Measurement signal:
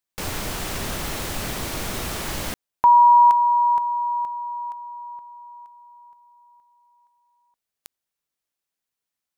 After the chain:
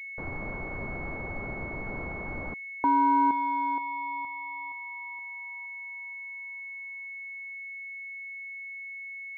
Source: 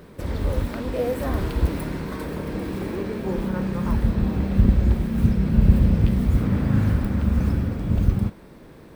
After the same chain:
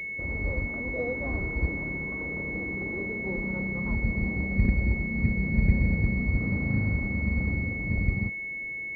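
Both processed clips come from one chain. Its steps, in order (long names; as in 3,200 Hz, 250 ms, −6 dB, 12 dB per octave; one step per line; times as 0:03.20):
switching amplifier with a slow clock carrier 2,200 Hz
level −7 dB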